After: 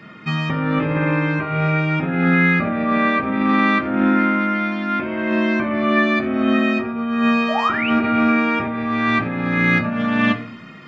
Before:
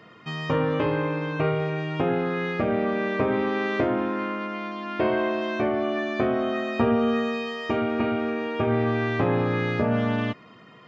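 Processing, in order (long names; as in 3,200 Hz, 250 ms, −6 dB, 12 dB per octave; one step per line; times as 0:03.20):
high-shelf EQ 4,300 Hz −2 dB, from 0:07.59 +6 dB
0:07.48–0:07.90: sound drawn into the spectrogram rise 590–3,100 Hz −28 dBFS
compressor whose output falls as the input rises −26 dBFS, ratio −0.5
hum removal 92.71 Hz, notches 9
convolution reverb RT60 0.45 s, pre-delay 3 ms, DRR 1.5 dB
dynamic equaliser 1,600 Hz, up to +4 dB, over −41 dBFS, Q 1.2
level +4 dB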